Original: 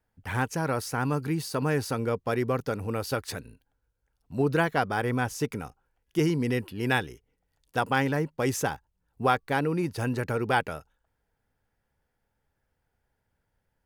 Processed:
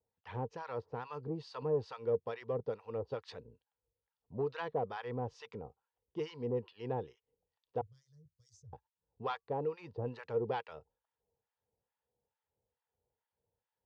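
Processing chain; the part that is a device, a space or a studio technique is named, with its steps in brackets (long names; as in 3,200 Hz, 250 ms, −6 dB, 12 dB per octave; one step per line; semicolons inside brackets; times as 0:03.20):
0:07.81–0:08.73: elliptic band-stop filter 100–6,400 Hz, stop band 40 dB
guitar amplifier with harmonic tremolo (two-band tremolo in antiphase 2.3 Hz, depth 100%, crossover 880 Hz; soft clipping −20.5 dBFS, distortion −19 dB; loudspeaker in its box 78–4,200 Hz, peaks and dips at 170 Hz −4 dB, 280 Hz −7 dB, 470 Hz +10 dB, 950 Hz +5 dB, 1,500 Hz −8 dB, 2,200 Hz −6 dB)
level −7 dB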